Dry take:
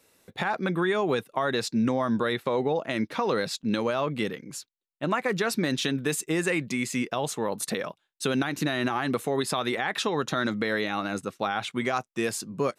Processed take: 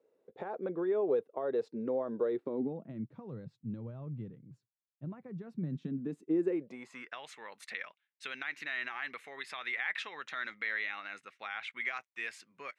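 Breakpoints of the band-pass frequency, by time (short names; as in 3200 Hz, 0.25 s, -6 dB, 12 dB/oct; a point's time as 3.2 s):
band-pass, Q 3.5
2.23 s 460 Hz
3.12 s 120 Hz
5.47 s 120 Hz
6.56 s 390 Hz
7.18 s 2100 Hz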